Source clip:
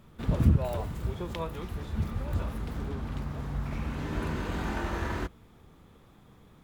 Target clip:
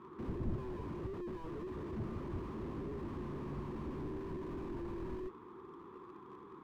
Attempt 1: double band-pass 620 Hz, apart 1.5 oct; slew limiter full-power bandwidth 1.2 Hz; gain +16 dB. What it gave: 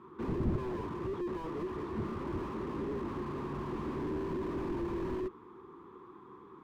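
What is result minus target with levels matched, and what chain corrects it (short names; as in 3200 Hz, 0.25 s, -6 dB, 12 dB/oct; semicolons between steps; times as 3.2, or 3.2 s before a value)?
slew limiter: distortion -7 dB
double band-pass 620 Hz, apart 1.5 oct; slew limiter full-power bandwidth 0.5 Hz; gain +16 dB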